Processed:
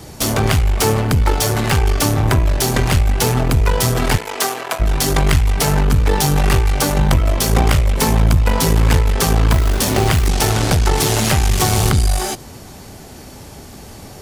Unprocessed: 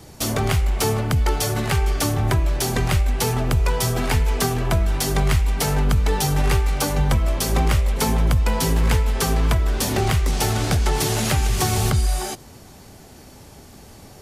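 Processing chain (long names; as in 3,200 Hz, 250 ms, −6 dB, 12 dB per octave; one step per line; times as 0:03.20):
one-sided soft clipper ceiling −24.5 dBFS
0:04.16–0:04.79: high-pass filter 360 Hz → 750 Hz 12 dB per octave
0:09.51–0:10.28: floating-point word with a short mantissa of 2 bits
level +8 dB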